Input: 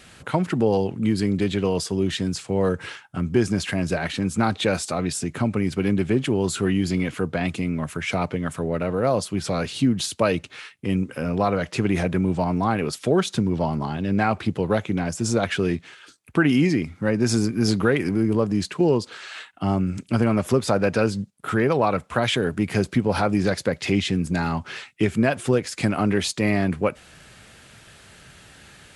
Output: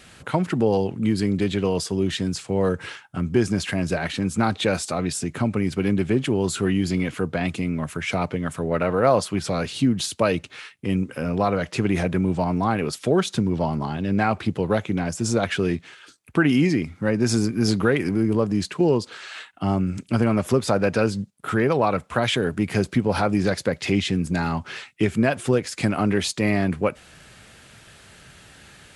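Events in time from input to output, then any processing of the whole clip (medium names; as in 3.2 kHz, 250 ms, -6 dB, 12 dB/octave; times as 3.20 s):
8.71–9.39 s: peaking EQ 1.3 kHz +6.5 dB 2.5 oct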